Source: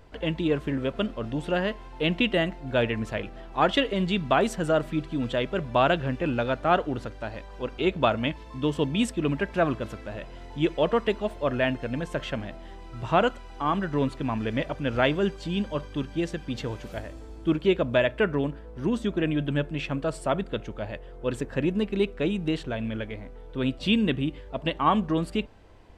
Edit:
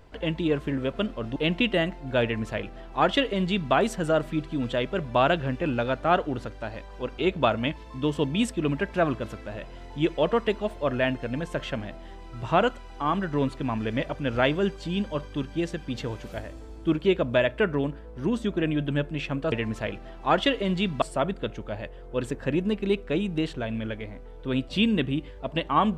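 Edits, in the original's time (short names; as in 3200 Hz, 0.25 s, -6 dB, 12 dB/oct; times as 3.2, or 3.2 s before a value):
1.36–1.96 cut
2.83–4.33 copy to 20.12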